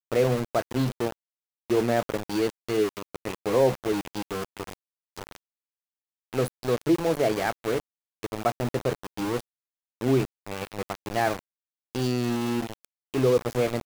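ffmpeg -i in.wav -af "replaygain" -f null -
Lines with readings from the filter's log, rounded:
track_gain = +6.5 dB
track_peak = 0.202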